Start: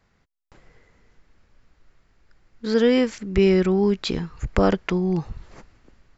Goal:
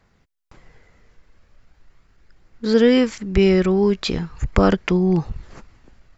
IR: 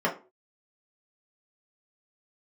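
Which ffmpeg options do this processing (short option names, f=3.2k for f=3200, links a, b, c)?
-af "aphaser=in_gain=1:out_gain=1:delay=2:decay=0.21:speed=0.39:type=triangular,atempo=1,volume=3dB"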